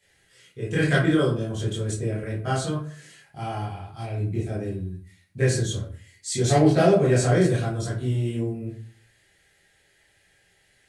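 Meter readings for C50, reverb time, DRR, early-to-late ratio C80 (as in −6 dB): 5.0 dB, 0.45 s, −8.0 dB, 10.0 dB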